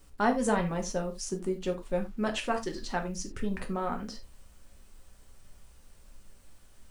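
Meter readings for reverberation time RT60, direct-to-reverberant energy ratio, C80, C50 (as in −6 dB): non-exponential decay, 3.5 dB, 19.0 dB, 12.5 dB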